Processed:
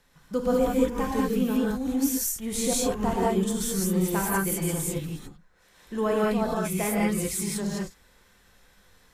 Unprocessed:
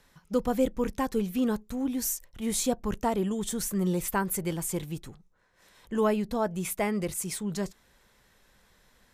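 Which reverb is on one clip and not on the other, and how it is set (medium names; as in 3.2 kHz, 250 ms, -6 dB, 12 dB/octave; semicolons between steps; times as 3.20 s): gated-style reverb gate 230 ms rising, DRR -5 dB; trim -2.5 dB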